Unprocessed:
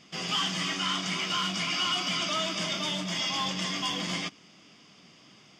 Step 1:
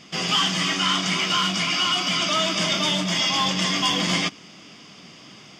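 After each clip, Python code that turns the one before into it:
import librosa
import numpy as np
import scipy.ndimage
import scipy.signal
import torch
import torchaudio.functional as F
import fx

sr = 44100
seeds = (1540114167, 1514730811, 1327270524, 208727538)

y = fx.rider(x, sr, range_db=10, speed_s=0.5)
y = y * librosa.db_to_amplitude(8.0)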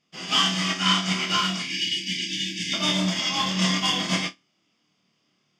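y = fx.spec_erase(x, sr, start_s=1.62, length_s=1.11, low_hz=380.0, high_hz=1600.0)
y = fx.room_flutter(y, sr, wall_m=4.6, rt60_s=0.36)
y = fx.upward_expand(y, sr, threshold_db=-35.0, expansion=2.5)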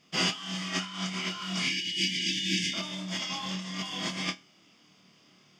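y = fx.over_compress(x, sr, threshold_db=-35.0, ratio=-1.0)
y = fx.comb_fb(y, sr, f0_hz=91.0, decay_s=0.19, harmonics='all', damping=0.0, mix_pct=40)
y = y * librosa.db_to_amplitude(3.5)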